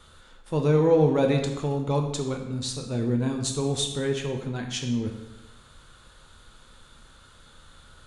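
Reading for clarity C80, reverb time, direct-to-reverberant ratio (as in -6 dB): 8.5 dB, 1.0 s, 2.5 dB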